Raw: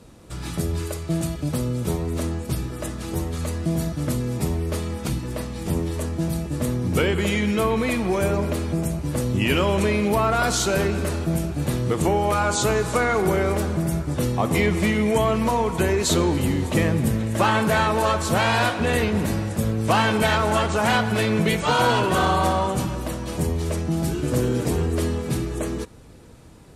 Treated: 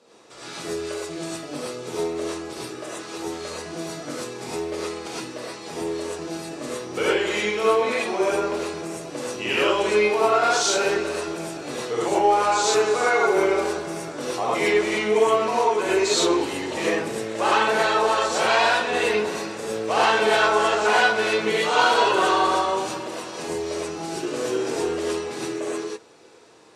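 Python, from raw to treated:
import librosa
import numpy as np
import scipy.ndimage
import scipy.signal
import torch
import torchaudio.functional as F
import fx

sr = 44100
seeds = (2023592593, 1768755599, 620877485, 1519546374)

y = scipy.signal.sosfilt(scipy.signal.cheby1(2, 1.0, [460.0, 6200.0], 'bandpass', fs=sr, output='sos'), x)
y = fx.rev_gated(y, sr, seeds[0], gate_ms=140, shape='rising', drr_db=-7.5)
y = y * 10.0 ** (-5.0 / 20.0)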